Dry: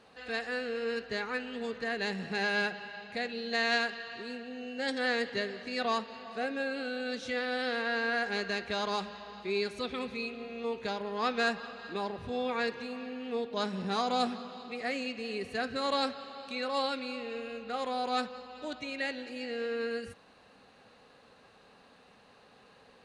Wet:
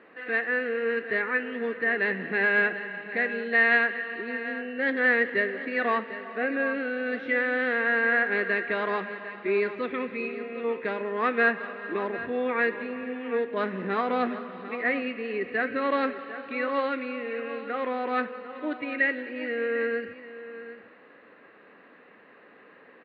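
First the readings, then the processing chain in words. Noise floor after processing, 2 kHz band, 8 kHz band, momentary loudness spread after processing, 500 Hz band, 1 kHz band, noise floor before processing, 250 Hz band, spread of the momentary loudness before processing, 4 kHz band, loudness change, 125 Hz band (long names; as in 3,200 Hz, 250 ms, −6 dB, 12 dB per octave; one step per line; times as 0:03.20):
−54 dBFS, +9.5 dB, below −25 dB, 11 LU, +6.0 dB, +3.5 dB, −60 dBFS, +5.0 dB, 10 LU, −7.0 dB, +6.5 dB, can't be measured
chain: loudspeaker in its box 240–2,400 Hz, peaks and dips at 320 Hz +8 dB, 800 Hz −8 dB, 1,900 Hz +8 dB
single-tap delay 749 ms −13.5 dB
level +6 dB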